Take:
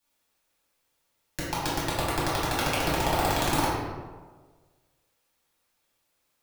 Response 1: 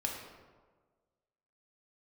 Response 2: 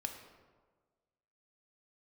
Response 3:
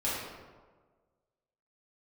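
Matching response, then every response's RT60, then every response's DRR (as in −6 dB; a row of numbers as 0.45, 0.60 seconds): 3; 1.5, 1.5, 1.5 seconds; −0.5, 4.5, −9.0 decibels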